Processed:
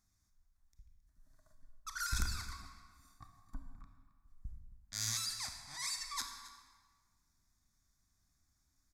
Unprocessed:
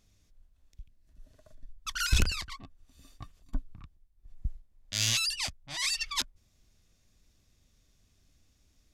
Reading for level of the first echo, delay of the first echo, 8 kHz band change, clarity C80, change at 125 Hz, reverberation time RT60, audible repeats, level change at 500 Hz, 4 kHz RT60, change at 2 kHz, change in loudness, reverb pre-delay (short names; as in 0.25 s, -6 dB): -17.0 dB, 0.269 s, -6.0 dB, 7.0 dB, -10.5 dB, 1.5 s, 1, -16.5 dB, 1.2 s, -10.0 dB, -8.0 dB, 26 ms